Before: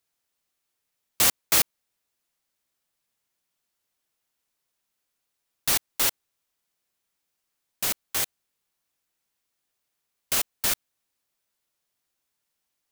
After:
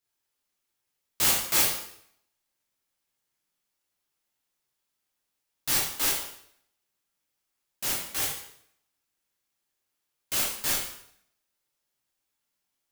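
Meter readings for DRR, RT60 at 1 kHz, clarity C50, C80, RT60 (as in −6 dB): −5.0 dB, 0.65 s, 2.5 dB, 6.5 dB, 0.70 s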